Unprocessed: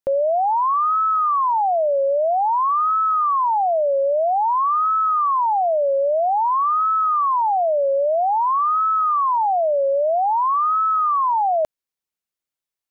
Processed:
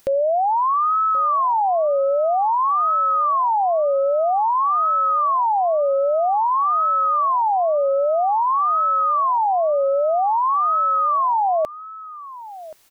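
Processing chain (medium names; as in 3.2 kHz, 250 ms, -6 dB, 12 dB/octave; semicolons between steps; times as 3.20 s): upward compressor, threshold -31 dBFS; delay 1078 ms -17 dB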